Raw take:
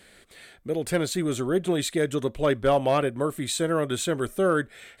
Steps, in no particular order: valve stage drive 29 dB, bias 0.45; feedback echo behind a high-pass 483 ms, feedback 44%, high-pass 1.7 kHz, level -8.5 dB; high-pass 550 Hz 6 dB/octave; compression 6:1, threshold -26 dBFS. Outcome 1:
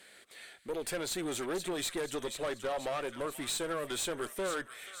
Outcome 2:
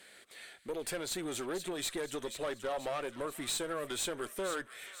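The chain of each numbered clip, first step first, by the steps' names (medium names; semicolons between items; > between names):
high-pass > compression > feedback echo behind a high-pass > valve stage; compression > high-pass > valve stage > feedback echo behind a high-pass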